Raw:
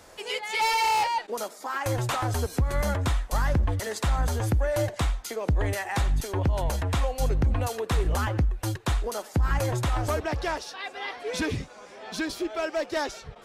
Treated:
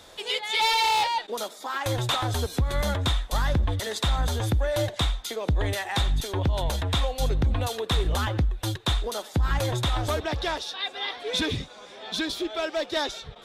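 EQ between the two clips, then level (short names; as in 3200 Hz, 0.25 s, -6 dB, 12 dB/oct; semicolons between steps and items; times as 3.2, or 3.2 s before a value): bell 3600 Hz +14.5 dB 0.32 oct; 0.0 dB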